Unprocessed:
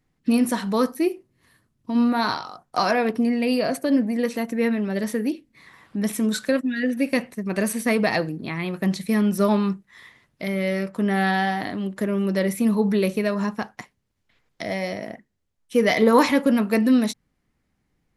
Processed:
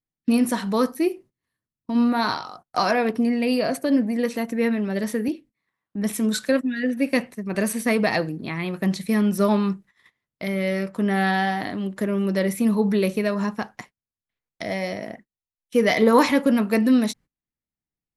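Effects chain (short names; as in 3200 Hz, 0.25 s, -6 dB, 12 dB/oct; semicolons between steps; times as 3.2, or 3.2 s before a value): gate -44 dBFS, range -23 dB; 5.28–7.55 three-band expander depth 40%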